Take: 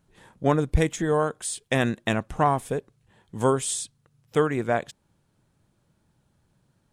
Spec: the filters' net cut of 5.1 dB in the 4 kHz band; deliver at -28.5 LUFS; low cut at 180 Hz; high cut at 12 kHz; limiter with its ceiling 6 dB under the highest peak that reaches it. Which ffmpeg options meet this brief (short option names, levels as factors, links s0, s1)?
-af "highpass=180,lowpass=12000,equalizer=f=4000:t=o:g=-6.5,alimiter=limit=0.2:level=0:latency=1"